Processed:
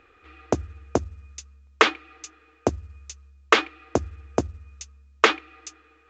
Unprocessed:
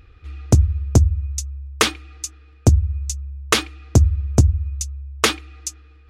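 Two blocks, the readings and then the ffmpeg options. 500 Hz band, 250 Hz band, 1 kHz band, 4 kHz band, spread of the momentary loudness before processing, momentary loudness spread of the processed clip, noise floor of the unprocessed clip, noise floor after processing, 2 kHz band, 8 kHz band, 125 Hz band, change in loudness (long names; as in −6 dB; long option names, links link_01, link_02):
+1.5 dB, −5.5 dB, +3.0 dB, −4.5 dB, 15 LU, 22 LU, −48 dBFS, −59 dBFS, +1.5 dB, −12.5 dB, −19.5 dB, −5.0 dB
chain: -filter_complex "[0:a]acrossover=split=310 2900:gain=0.0631 1 0.158[link_01][link_02][link_03];[link_01][link_02][link_03]amix=inputs=3:normalize=0,volume=3dB" -ar 16000 -c:a pcm_mulaw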